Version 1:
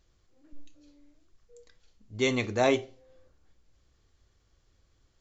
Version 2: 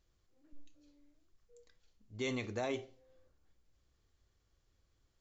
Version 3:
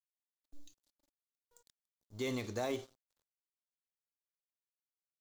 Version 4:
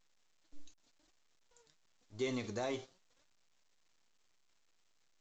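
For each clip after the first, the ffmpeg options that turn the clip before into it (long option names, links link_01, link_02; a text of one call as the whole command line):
ffmpeg -i in.wav -af "alimiter=limit=-20dB:level=0:latency=1,volume=-8dB" out.wav
ffmpeg -i in.wav -filter_complex "[0:a]acrossover=split=2500[link_01][link_02];[link_02]acompressor=threshold=-58dB:ratio=4:attack=1:release=60[link_03];[link_01][link_03]amix=inputs=2:normalize=0,aeval=exprs='sgn(val(0))*max(abs(val(0))-0.00112,0)':channel_layout=same,aexciter=amount=1.9:drive=9.2:freq=3500,volume=1dB" out.wav
ffmpeg -i in.wav -af "flanger=delay=2.5:depth=4.3:regen=64:speed=0.9:shape=triangular,volume=3.5dB" -ar 16000 -c:a pcm_alaw out.wav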